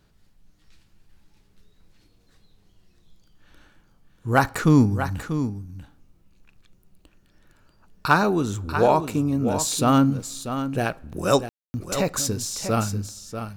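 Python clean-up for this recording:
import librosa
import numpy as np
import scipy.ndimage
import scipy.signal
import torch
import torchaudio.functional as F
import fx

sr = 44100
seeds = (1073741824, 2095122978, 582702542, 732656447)

y = fx.fix_declip(x, sr, threshold_db=-5.0)
y = fx.fix_ambience(y, sr, seeds[0], print_start_s=2.01, print_end_s=2.51, start_s=11.49, end_s=11.74)
y = fx.fix_echo_inverse(y, sr, delay_ms=640, level_db=-9.5)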